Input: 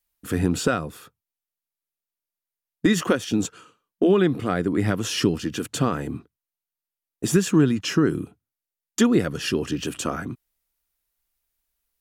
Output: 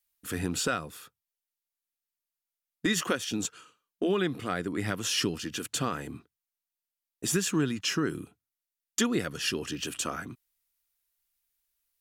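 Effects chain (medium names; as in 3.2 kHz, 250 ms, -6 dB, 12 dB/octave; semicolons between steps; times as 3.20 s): tilt shelf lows -5 dB, about 1.1 kHz; trim -5.5 dB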